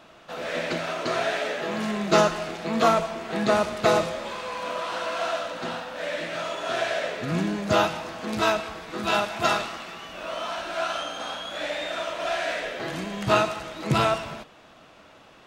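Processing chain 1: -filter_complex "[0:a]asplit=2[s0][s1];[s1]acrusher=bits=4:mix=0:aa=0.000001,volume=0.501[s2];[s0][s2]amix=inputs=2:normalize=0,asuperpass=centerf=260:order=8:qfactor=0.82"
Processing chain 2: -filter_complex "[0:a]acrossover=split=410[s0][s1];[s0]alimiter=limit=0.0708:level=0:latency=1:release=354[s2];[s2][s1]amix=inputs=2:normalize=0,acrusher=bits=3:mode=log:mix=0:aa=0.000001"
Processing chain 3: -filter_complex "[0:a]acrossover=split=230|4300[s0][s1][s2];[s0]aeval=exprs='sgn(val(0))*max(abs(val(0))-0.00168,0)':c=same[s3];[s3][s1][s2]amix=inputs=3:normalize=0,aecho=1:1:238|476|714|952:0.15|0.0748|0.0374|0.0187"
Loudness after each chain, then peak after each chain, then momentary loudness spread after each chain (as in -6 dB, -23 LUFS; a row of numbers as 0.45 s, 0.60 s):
-30.5 LUFS, -26.5 LUFS, -26.5 LUFS; -9.5 dBFS, -7.0 dBFS, -5.5 dBFS; 17 LU, 10 LU, 10 LU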